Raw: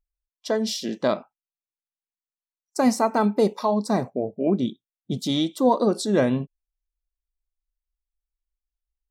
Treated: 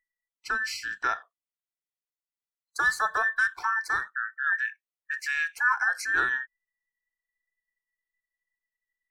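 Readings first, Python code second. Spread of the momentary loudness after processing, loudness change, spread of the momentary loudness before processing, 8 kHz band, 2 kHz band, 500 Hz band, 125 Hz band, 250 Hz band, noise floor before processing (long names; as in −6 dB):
9 LU, −3.5 dB, 9 LU, −5.5 dB, +15.0 dB, −22.5 dB, below −25 dB, below −30 dB, below −85 dBFS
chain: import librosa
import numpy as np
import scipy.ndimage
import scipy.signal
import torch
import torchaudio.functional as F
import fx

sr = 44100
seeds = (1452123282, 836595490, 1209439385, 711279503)

y = fx.band_invert(x, sr, width_hz=2000)
y = y * 10.0 ** (-5.5 / 20.0)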